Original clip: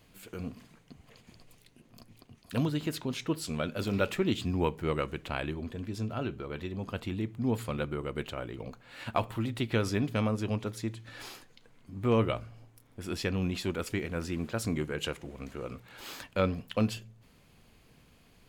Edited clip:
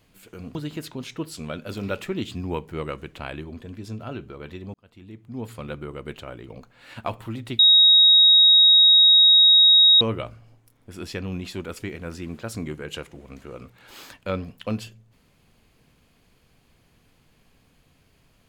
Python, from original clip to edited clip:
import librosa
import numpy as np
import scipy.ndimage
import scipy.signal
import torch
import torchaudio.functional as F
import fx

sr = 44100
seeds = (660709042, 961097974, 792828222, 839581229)

y = fx.edit(x, sr, fx.cut(start_s=0.55, length_s=2.1),
    fx.fade_in_span(start_s=6.84, length_s=1.03),
    fx.bleep(start_s=9.69, length_s=2.42, hz=3780.0, db=-10.5), tone=tone)